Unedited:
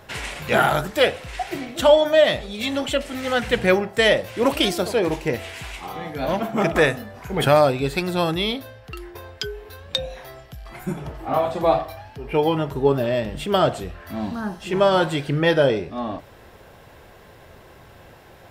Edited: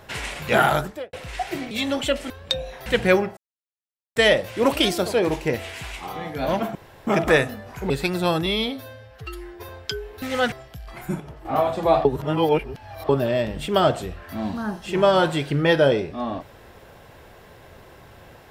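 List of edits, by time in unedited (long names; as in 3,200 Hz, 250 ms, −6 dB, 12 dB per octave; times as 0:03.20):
0:00.74–0:01.13: fade out and dull
0:01.71–0:02.56: remove
0:03.15–0:03.45: swap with 0:09.74–0:10.30
0:03.96: splice in silence 0.79 s
0:06.55: splice in room tone 0.32 s
0:07.38–0:07.83: remove
0:08.39–0:09.21: time-stretch 1.5×
0:10.98–0:11.23: clip gain −7 dB
0:11.83–0:12.87: reverse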